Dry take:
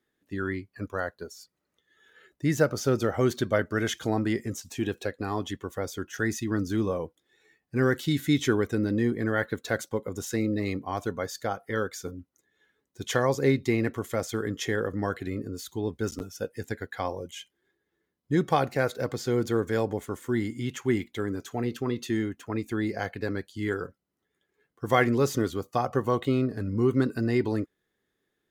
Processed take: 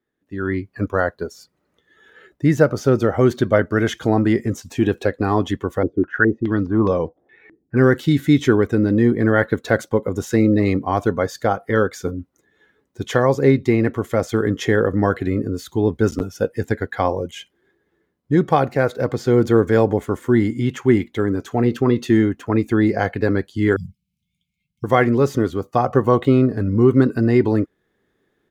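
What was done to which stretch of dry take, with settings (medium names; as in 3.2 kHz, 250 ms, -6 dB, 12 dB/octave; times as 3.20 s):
5.83–7.77 s: step-sequenced low-pass 4.8 Hz 330–4800 Hz
23.76–24.84 s: brick-wall FIR band-stop 220–2100 Hz
whole clip: treble shelf 2.7 kHz -11.5 dB; level rider gain up to 13.5 dB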